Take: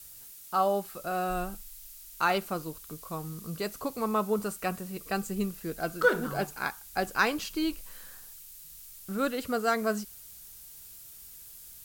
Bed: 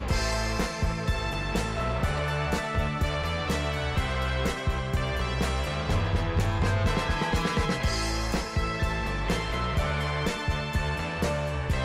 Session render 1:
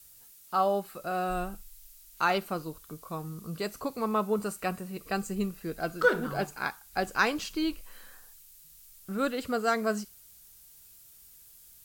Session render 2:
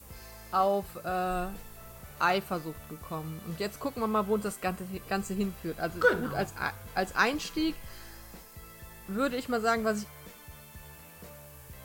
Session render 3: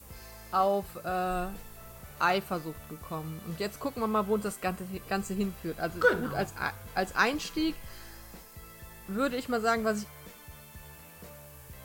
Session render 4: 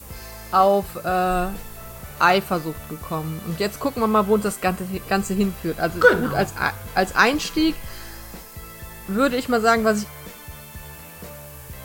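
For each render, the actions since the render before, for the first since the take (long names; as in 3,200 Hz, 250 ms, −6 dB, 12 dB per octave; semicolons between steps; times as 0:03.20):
noise reduction from a noise print 6 dB
mix in bed −21.5 dB
no processing that can be heard
level +10 dB; brickwall limiter −2 dBFS, peak gain reduction 1.5 dB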